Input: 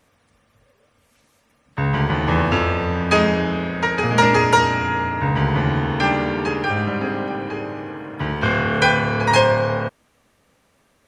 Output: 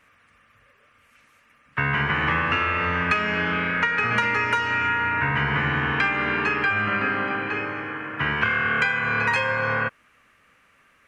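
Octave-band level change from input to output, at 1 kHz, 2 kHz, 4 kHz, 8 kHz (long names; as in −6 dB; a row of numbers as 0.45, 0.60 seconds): −4.5 dB, +1.5 dB, −4.5 dB, below −10 dB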